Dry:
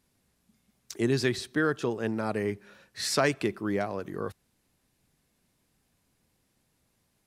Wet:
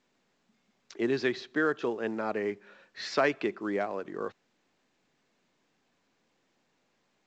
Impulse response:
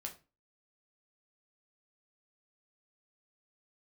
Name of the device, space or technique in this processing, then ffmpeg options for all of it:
telephone: -af "highpass=270,lowpass=3300" -ar 16000 -c:a pcm_mulaw

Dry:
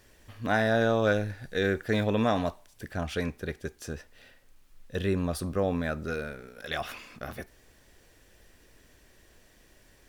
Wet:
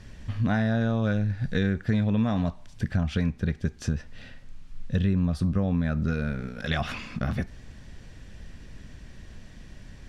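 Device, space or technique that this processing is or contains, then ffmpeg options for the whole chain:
jukebox: -af "lowpass=6000,lowshelf=f=270:t=q:w=1.5:g=10,acompressor=threshold=0.0316:ratio=4,volume=2.24"

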